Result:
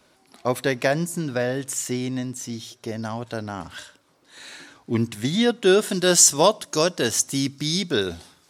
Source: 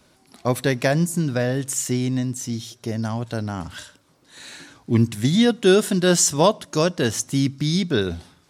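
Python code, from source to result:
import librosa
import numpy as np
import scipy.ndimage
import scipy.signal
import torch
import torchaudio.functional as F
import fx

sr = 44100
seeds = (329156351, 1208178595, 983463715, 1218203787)

y = fx.bass_treble(x, sr, bass_db=-8, treble_db=fx.steps((0.0, -3.0), (5.89, 5.0)))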